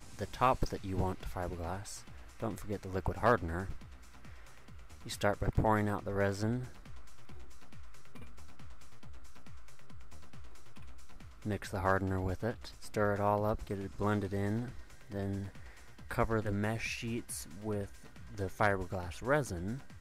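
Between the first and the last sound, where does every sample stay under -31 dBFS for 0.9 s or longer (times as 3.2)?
3.7–5.12
6.57–11.46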